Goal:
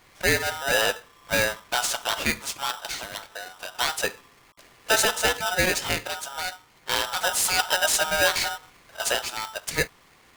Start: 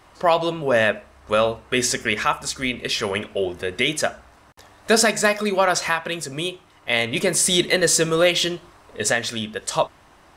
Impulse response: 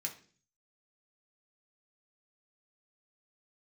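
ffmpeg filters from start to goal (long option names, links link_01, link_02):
-filter_complex "[0:a]bandreject=frequency=59.81:width_type=h:width=4,bandreject=frequency=119.62:width_type=h:width=4,bandreject=frequency=179.43:width_type=h:width=4,asettb=1/sr,asplit=3[link_01][link_02][link_03];[link_01]atrim=end=2.784[link_04];[link_02]atrim=start=2.78:end=3.75,asetpts=PTS-STARTPTS,afade=type=in:duration=0.004:curve=qsin,afade=type=out:start_time=0.966:duration=0.004:curve=qsin,acrossover=split=1700|4000[link_05][link_06][link_07];[link_05]acompressor=threshold=-33dB:ratio=4[link_08];[link_06]acompressor=threshold=-31dB:ratio=4[link_09];[link_07]acompressor=threshold=-31dB:ratio=4[link_10];[link_08][link_09][link_10]amix=inputs=3:normalize=0[link_11];[link_03]atrim=start=3.746[link_12];[link_04][link_11]acrossfade=duration=0.004:curve1=hsin:curve2=qsin[link_13];[link_13][link_12]acrossfade=duration=0.004:curve1=qsin:curve2=hsin,aeval=exprs='val(0)*sgn(sin(2*PI*1100*n/s))':channel_layout=same,volume=-4.5dB"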